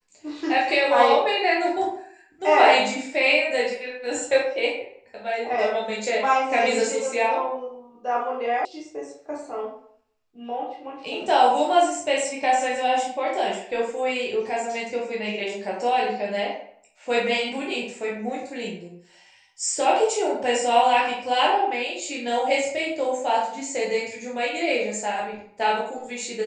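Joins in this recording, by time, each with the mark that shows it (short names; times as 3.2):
8.65 sound cut off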